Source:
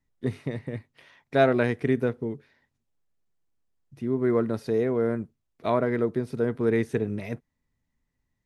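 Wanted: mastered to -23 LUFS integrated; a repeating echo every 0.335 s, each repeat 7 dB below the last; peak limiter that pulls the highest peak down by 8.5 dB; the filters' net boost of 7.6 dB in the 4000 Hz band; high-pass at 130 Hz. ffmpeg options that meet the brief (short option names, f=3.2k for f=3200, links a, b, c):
-af "highpass=130,equalizer=f=4k:t=o:g=8.5,alimiter=limit=-16dB:level=0:latency=1,aecho=1:1:335|670|1005|1340|1675:0.447|0.201|0.0905|0.0407|0.0183,volume=5.5dB"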